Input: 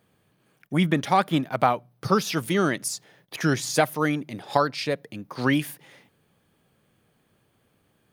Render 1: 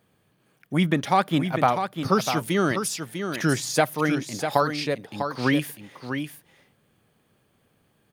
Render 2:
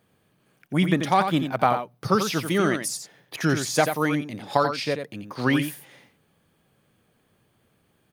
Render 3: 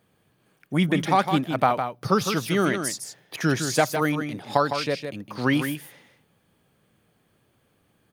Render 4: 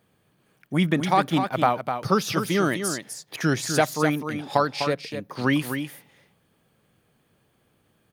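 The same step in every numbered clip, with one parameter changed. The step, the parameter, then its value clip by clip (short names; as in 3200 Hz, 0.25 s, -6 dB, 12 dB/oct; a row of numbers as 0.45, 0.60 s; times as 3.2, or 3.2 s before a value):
echo, time: 648, 88, 158, 252 ms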